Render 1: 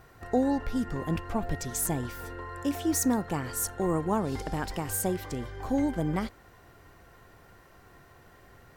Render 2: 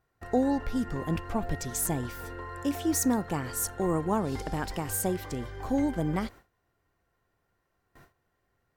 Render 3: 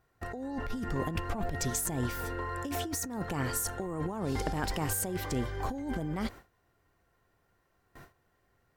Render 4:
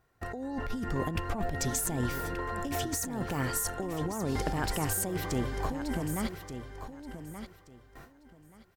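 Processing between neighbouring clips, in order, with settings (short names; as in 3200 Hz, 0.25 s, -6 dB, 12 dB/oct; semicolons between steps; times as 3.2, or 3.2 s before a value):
gate with hold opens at -42 dBFS
negative-ratio compressor -33 dBFS, ratio -1
feedback echo 1.178 s, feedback 21%, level -10 dB; gain +1 dB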